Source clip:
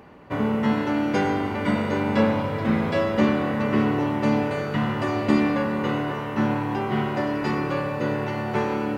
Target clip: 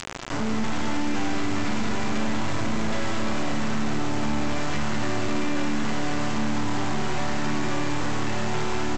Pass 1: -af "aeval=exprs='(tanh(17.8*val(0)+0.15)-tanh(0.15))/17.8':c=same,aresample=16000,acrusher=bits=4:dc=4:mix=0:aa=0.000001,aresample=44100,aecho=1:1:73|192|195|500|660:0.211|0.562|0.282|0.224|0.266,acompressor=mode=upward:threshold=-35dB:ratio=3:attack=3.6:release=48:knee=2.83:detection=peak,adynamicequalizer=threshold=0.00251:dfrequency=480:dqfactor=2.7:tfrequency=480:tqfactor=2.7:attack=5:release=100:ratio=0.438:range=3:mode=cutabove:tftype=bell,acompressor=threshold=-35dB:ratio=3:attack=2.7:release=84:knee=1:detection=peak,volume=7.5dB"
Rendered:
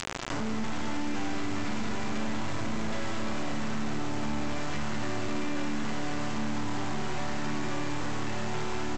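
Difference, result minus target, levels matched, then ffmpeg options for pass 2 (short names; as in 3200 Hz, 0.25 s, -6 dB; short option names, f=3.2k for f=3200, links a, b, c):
compressor: peak gain reduction +6 dB
-af "aeval=exprs='(tanh(17.8*val(0)+0.15)-tanh(0.15))/17.8':c=same,aresample=16000,acrusher=bits=4:dc=4:mix=0:aa=0.000001,aresample=44100,aecho=1:1:73|192|195|500|660:0.211|0.562|0.282|0.224|0.266,acompressor=mode=upward:threshold=-35dB:ratio=3:attack=3.6:release=48:knee=2.83:detection=peak,adynamicequalizer=threshold=0.00251:dfrequency=480:dqfactor=2.7:tfrequency=480:tqfactor=2.7:attack=5:release=100:ratio=0.438:range=3:mode=cutabove:tftype=bell,acompressor=threshold=-26dB:ratio=3:attack=2.7:release=84:knee=1:detection=peak,volume=7.5dB"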